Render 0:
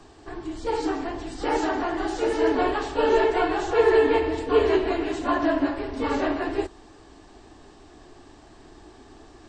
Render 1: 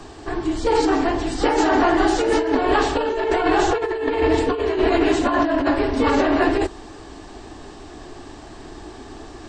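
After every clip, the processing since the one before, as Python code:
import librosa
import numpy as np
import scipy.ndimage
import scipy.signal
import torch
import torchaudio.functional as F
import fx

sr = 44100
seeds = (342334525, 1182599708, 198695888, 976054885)

y = fx.over_compress(x, sr, threshold_db=-26.0, ratio=-1.0)
y = y * librosa.db_to_amplitude(7.5)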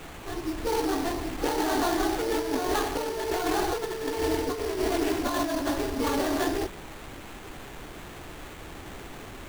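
y = fx.dmg_noise_colour(x, sr, seeds[0], colour='pink', level_db=-34.0)
y = fx.sample_hold(y, sr, seeds[1], rate_hz=5200.0, jitter_pct=20)
y = y * librosa.db_to_amplitude(-9.0)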